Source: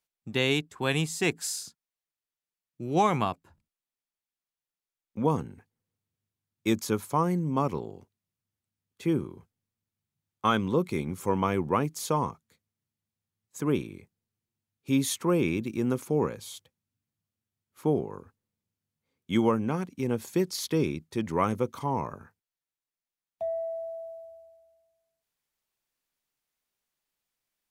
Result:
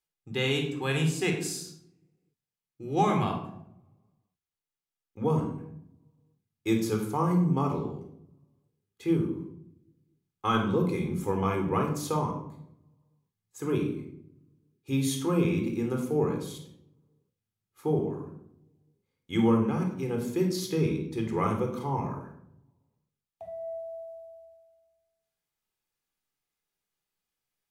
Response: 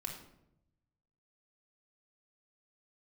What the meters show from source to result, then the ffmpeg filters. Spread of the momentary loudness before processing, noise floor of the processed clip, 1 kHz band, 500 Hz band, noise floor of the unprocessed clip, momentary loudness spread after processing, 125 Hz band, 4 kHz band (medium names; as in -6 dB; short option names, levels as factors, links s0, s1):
15 LU, under -85 dBFS, -1.5 dB, -0.5 dB, under -85 dBFS, 16 LU, +2.5 dB, -2.0 dB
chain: -filter_complex "[1:a]atrim=start_sample=2205,asetrate=48510,aresample=44100[s0];[0:a][s0]afir=irnorm=-1:irlink=0"